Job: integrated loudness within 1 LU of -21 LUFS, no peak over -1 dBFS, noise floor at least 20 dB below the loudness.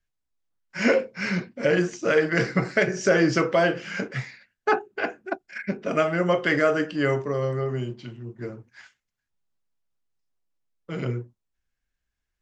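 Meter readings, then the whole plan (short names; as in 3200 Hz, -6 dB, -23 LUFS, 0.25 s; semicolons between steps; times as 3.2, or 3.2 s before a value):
loudness -24.5 LUFS; peak -7.5 dBFS; loudness target -21.0 LUFS
-> gain +3.5 dB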